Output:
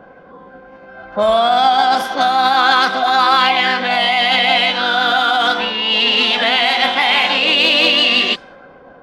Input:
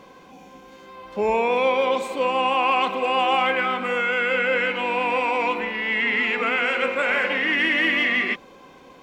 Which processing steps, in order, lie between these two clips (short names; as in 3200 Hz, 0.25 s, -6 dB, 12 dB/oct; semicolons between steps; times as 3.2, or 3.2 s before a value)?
low-pass opened by the level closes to 730 Hz, open at -17.5 dBFS; formant shift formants +6 st; gain +8 dB